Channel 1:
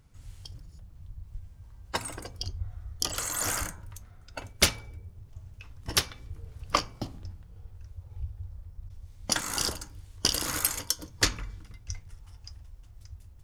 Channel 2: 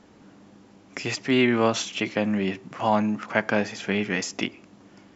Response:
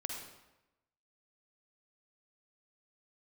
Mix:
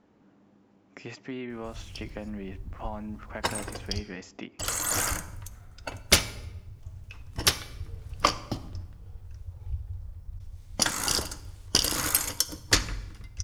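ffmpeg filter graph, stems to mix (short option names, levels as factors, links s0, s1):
-filter_complex "[0:a]adelay=1500,volume=1.12,asplit=3[s0][s1][s2];[s0]atrim=end=4.01,asetpts=PTS-STARTPTS,afade=t=out:st=4.006:d=0.004:c=hsin[s3];[s1]atrim=start=4.01:end=4.59,asetpts=PTS-STARTPTS,volume=0[s4];[s2]atrim=start=4.59,asetpts=PTS-STARTPTS,afade=t=in:d=0.004:c=hsin[s5];[s3][s4][s5]concat=n=3:v=0:a=1,asplit=2[s6][s7];[s7]volume=0.251[s8];[1:a]highshelf=f=2800:g=-10.5,acompressor=threshold=0.0562:ratio=5,volume=0.355[s9];[2:a]atrim=start_sample=2205[s10];[s8][s10]afir=irnorm=-1:irlink=0[s11];[s6][s9][s11]amix=inputs=3:normalize=0"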